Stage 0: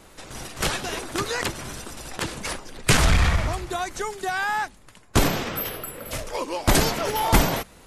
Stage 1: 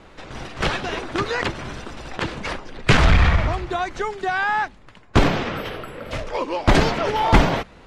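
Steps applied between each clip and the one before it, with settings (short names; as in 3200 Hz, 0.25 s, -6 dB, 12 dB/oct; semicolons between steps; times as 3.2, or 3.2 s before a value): LPF 3400 Hz 12 dB/oct; gain +4 dB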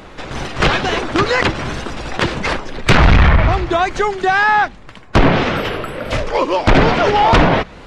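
treble ducked by the level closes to 2800 Hz, closed at -12 dBFS; sine folder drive 10 dB, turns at -1 dBFS; wow and flutter 83 cents; gain -4.5 dB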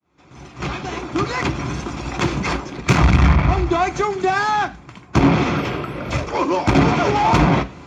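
opening faded in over 2.09 s; tube stage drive 10 dB, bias 0.4; reverb RT60 0.35 s, pre-delay 3 ms, DRR 8.5 dB; gain -6.5 dB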